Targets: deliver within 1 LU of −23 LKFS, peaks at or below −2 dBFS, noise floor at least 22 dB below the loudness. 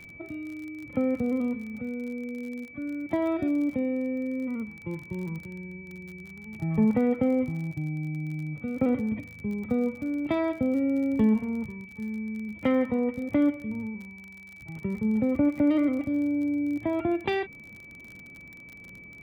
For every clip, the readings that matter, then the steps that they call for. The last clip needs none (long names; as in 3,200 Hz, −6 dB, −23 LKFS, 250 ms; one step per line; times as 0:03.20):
crackle rate 38 per second; interfering tone 2,300 Hz; level of the tone −45 dBFS; integrated loudness −28.5 LKFS; sample peak −14.0 dBFS; target loudness −23.0 LKFS
→ click removal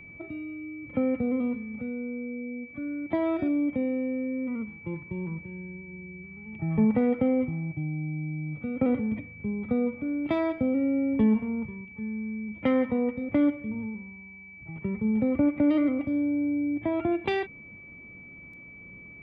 crackle rate 0.052 per second; interfering tone 2,300 Hz; level of the tone −45 dBFS
→ notch filter 2,300 Hz, Q 30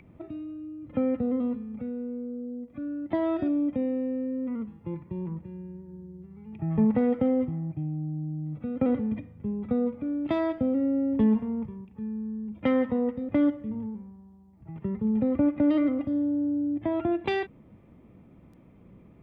interfering tone none found; integrated loudness −28.5 LKFS; sample peak −14.5 dBFS; target loudness −23.0 LKFS
→ level +5.5 dB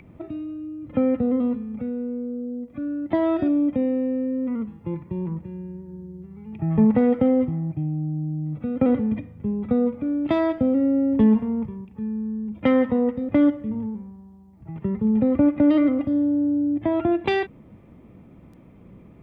integrated loudness −23.0 LKFS; sample peak −9.0 dBFS; background noise floor −49 dBFS